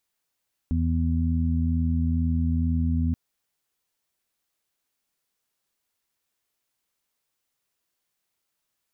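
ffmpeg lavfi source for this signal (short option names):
-f lavfi -i "aevalsrc='0.075*sin(2*PI*82.2*t)+0.0335*sin(2*PI*164.4*t)+0.0473*sin(2*PI*246.6*t)':d=2.43:s=44100"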